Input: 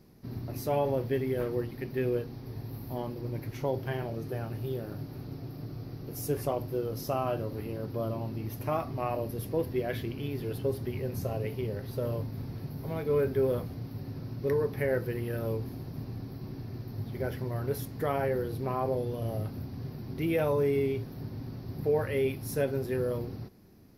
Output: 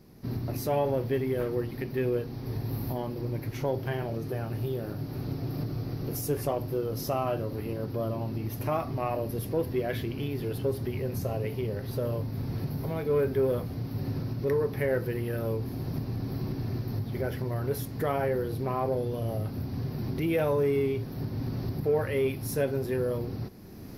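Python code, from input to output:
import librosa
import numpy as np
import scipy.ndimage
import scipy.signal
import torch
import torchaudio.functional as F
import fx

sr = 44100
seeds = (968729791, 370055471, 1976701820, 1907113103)

p1 = fx.recorder_agc(x, sr, target_db=-25.5, rise_db_per_s=17.0, max_gain_db=30)
p2 = 10.0 ** (-29.5 / 20.0) * np.tanh(p1 / 10.0 ** (-29.5 / 20.0))
y = p1 + F.gain(torch.from_numpy(p2), -10.5).numpy()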